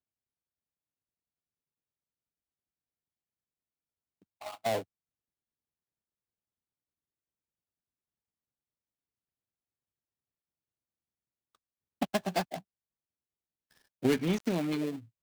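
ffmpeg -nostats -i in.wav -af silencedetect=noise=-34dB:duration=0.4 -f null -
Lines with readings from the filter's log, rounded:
silence_start: 0.00
silence_end: 4.46 | silence_duration: 4.46
silence_start: 4.81
silence_end: 12.02 | silence_duration: 7.21
silence_start: 12.58
silence_end: 14.04 | silence_duration: 1.46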